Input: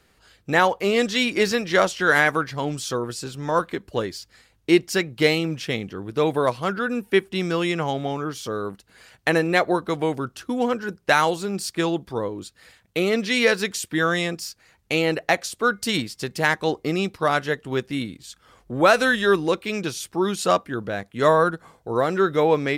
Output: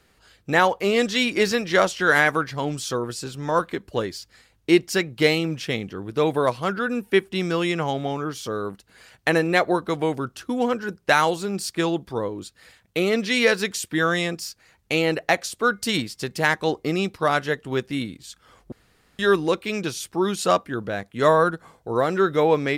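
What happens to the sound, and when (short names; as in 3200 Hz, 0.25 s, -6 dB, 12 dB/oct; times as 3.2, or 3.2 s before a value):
18.72–19.19 room tone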